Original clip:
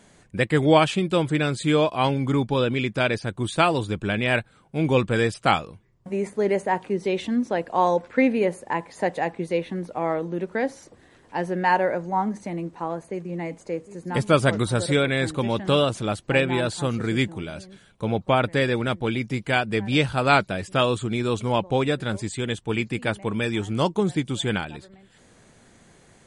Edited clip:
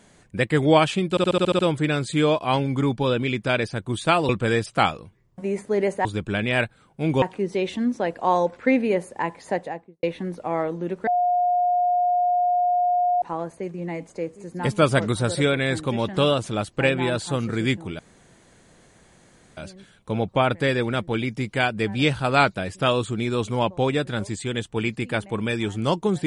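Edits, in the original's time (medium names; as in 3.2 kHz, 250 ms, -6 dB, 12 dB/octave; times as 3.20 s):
1.10 s: stutter 0.07 s, 8 plays
3.80–4.97 s: move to 6.73 s
8.93–9.54 s: studio fade out
10.58–12.73 s: bleep 714 Hz -17.5 dBFS
17.50 s: insert room tone 1.58 s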